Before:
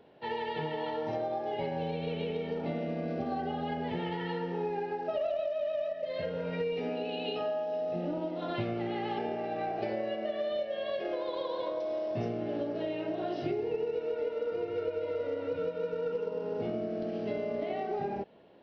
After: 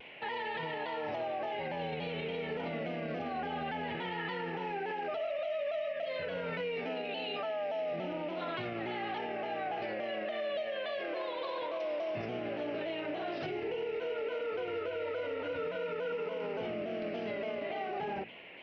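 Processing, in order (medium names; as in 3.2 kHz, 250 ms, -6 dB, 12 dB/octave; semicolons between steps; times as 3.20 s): peaking EQ 1.7 kHz +10 dB 2.2 oct; hum notches 60/120/180/240/300/360/420 Hz; peak limiter -29.5 dBFS, peak gain reduction 11 dB; band noise 1.9–3 kHz -53 dBFS; vibrato with a chosen wave saw down 3.5 Hz, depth 100 cents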